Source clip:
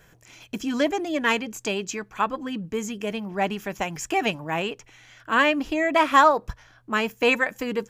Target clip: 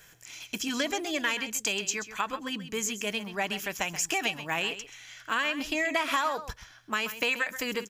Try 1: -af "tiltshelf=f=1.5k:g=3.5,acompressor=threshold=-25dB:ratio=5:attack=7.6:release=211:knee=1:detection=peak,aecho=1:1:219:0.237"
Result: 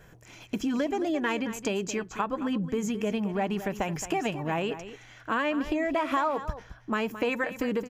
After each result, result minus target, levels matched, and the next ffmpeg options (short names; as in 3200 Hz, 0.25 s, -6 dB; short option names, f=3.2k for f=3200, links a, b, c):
echo 88 ms late; 2000 Hz band -4.5 dB
-af "tiltshelf=f=1.5k:g=3.5,acompressor=threshold=-25dB:ratio=5:attack=7.6:release=211:knee=1:detection=peak,aecho=1:1:131:0.237"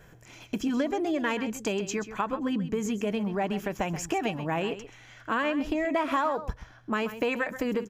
2000 Hz band -4.5 dB
-af "tiltshelf=f=1.5k:g=-7.5,acompressor=threshold=-25dB:ratio=5:attack=7.6:release=211:knee=1:detection=peak,aecho=1:1:131:0.237"